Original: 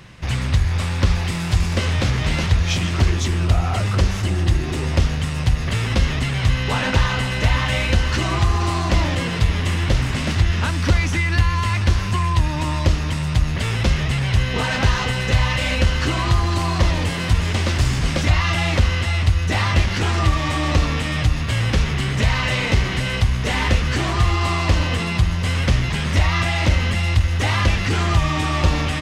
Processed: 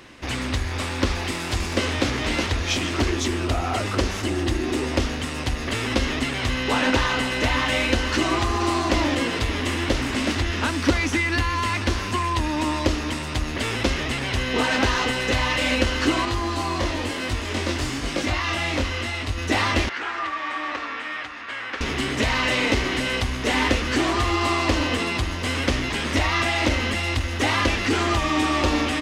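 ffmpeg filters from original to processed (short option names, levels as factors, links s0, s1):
-filter_complex "[0:a]asettb=1/sr,asplit=3[s0][s1][s2];[s0]atrim=end=16.254[s3];[s1]atrim=start=16.25:end=19.38,asetpts=PTS-STARTPTS,afade=t=in:d=0.004:c=qsin,afade=t=out:st=3.126:d=0.004:c=qsin,flanger=delay=19.5:depth=3.6:speed=1[s4];[s2]atrim=start=19.376[s5];[s3][s4]acrossfade=d=0.004:c1=hsin:c2=qsin[s6];[s6][s5]acrossfade=d=0.004:c1=qsin:c2=hsin,asettb=1/sr,asplit=3[s7][s8][s9];[s7]atrim=end=19.894[s10];[s8]atrim=start=19.89:end=21.81,asetpts=PTS-STARTPTS,afade=t=in:d=0.004:c=qsin,afade=t=out:st=1.916:d=0.004:c=qsin,bandpass=f=1500:t=q:w=1.5[s11];[s9]atrim=start=21.806[s12];[s10][s11]acrossfade=d=0.004:c1=hsin:c2=qsin[s13];[s13][s12]acrossfade=d=0.004:c1=qsin:c2=hsin,lowshelf=f=210:t=q:w=3:g=-8"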